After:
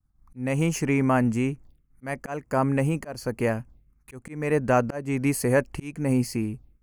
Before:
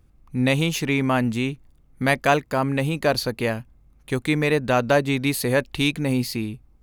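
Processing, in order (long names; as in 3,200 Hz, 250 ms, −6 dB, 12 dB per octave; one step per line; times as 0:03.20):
phaser swept by the level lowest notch 420 Hz, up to 3,700 Hz, full sweep at −26 dBFS
volume swells 318 ms
downward expander −47 dBFS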